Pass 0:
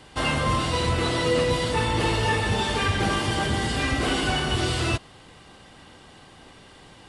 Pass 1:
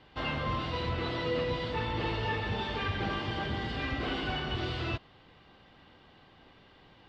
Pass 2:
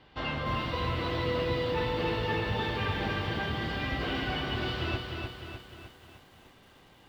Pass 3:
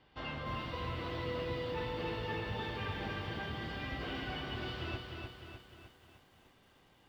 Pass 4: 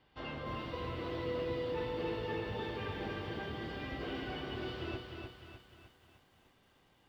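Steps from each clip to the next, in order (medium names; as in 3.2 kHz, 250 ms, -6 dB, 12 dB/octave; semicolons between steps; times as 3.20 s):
low-pass 4.2 kHz 24 dB/octave; trim -9 dB
bit-crushed delay 303 ms, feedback 55%, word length 10-bit, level -4.5 dB
band-stop 4 kHz, Q 26; trim -8 dB
dynamic bell 390 Hz, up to +7 dB, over -53 dBFS, Q 1.1; trim -3 dB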